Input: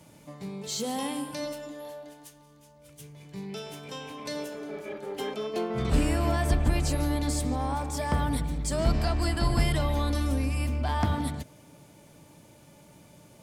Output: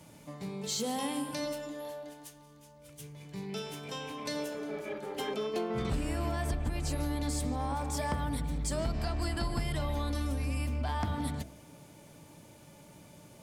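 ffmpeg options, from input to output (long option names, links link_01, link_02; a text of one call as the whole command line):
ffmpeg -i in.wav -af "bandreject=frequency=66.22:width_type=h:width=4,bandreject=frequency=132.44:width_type=h:width=4,bandreject=frequency=198.66:width_type=h:width=4,bandreject=frequency=264.88:width_type=h:width=4,bandreject=frequency=331.1:width_type=h:width=4,bandreject=frequency=397.32:width_type=h:width=4,bandreject=frequency=463.54:width_type=h:width=4,bandreject=frequency=529.76:width_type=h:width=4,bandreject=frequency=595.98:width_type=h:width=4,bandreject=frequency=662.2:width_type=h:width=4,bandreject=frequency=728.42:width_type=h:width=4,acompressor=threshold=-29dB:ratio=6" out.wav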